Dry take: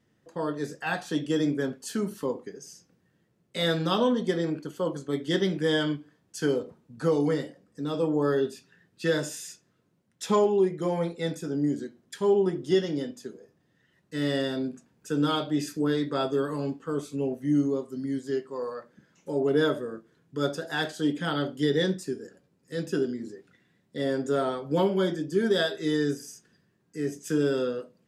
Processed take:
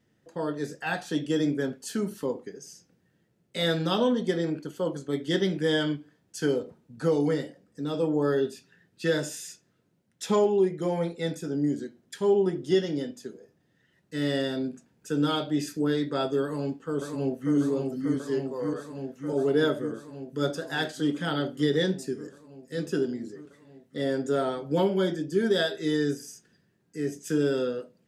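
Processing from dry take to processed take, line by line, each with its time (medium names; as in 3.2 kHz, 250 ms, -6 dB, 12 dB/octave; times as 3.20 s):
16.42–17.55 s: echo throw 590 ms, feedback 80%, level -4 dB
whole clip: peaking EQ 1.1 kHz -5.5 dB 0.26 oct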